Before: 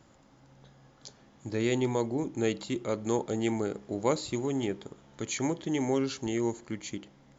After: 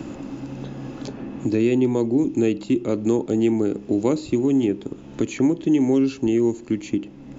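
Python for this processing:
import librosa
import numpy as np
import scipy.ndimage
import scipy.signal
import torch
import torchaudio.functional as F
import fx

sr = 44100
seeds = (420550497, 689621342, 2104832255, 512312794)

y = fx.low_shelf(x, sr, hz=110.0, db=11.5)
y = fx.small_body(y, sr, hz=(290.0, 2600.0), ring_ms=20, db=14)
y = fx.band_squash(y, sr, depth_pct=70)
y = y * 10.0 ** (-1.5 / 20.0)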